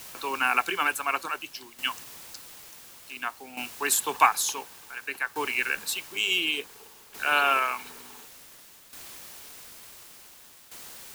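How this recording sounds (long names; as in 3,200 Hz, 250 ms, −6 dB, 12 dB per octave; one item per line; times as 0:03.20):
a quantiser's noise floor 8 bits, dither triangular
tremolo saw down 0.56 Hz, depth 70%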